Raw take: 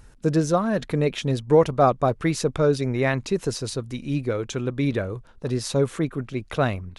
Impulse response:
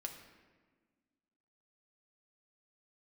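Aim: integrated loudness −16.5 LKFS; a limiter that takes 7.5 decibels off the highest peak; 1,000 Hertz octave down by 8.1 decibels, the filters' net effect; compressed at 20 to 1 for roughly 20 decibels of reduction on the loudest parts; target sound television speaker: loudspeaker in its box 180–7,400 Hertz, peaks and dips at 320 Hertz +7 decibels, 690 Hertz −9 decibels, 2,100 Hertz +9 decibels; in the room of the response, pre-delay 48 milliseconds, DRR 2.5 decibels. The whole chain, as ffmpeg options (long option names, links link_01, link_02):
-filter_complex "[0:a]equalizer=frequency=1000:width_type=o:gain=-7.5,acompressor=threshold=-32dB:ratio=20,alimiter=level_in=5.5dB:limit=-24dB:level=0:latency=1,volume=-5.5dB,asplit=2[link_01][link_02];[1:a]atrim=start_sample=2205,adelay=48[link_03];[link_02][link_03]afir=irnorm=-1:irlink=0,volume=0dB[link_04];[link_01][link_04]amix=inputs=2:normalize=0,highpass=frequency=180:width=0.5412,highpass=frequency=180:width=1.3066,equalizer=frequency=320:width_type=q:width=4:gain=7,equalizer=frequency=690:width_type=q:width=4:gain=-9,equalizer=frequency=2100:width_type=q:width=4:gain=9,lowpass=frequency=7400:width=0.5412,lowpass=frequency=7400:width=1.3066,volume=21dB"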